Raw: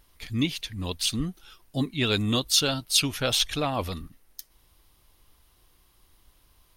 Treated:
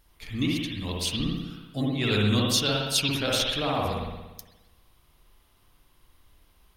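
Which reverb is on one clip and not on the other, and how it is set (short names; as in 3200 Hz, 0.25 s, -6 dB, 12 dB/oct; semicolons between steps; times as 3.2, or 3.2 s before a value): spring tank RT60 1.1 s, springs 58 ms, chirp 80 ms, DRR -3 dB; gain -3.5 dB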